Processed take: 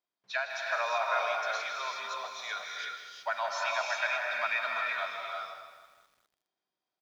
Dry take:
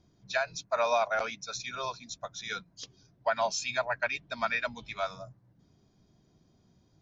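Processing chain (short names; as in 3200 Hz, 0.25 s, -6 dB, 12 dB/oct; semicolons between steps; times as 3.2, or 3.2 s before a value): G.711 law mismatch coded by mu; LPF 3600 Hz 12 dB/oct; gate with hold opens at -44 dBFS; HPF 900 Hz 12 dB/oct; feedback echo 0.157 s, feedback 41%, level -10.5 dB; non-linear reverb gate 0.4 s rising, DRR 0 dB; lo-fi delay 0.202 s, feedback 55%, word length 9-bit, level -14 dB; gain -1.5 dB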